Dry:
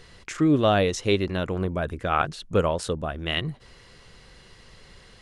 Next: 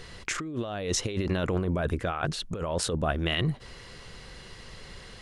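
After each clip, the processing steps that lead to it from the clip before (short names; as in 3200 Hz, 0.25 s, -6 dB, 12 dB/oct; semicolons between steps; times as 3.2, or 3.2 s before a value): negative-ratio compressor -29 dBFS, ratio -1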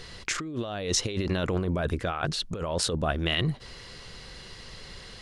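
bell 4500 Hz +5 dB 1 oct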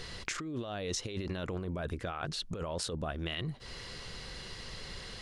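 compressor 4:1, threshold -35 dBFS, peak gain reduction 11.5 dB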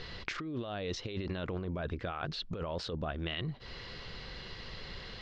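LPF 4600 Hz 24 dB/oct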